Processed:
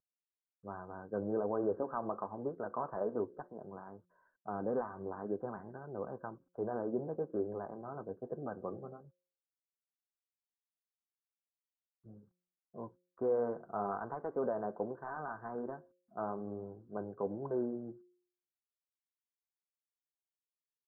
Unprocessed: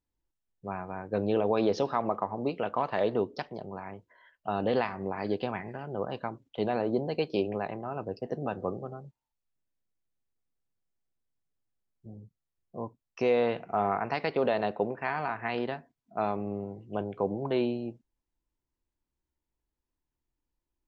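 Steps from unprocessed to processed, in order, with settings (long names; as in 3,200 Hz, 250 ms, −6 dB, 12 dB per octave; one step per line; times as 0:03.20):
variable-slope delta modulation 64 kbit/s
flanger 1.2 Hz, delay 1.7 ms, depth 4.7 ms, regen −59%
Chebyshev low-pass with heavy ripple 1,600 Hz, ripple 3 dB
hum removal 178.6 Hz, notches 3
level −2.5 dB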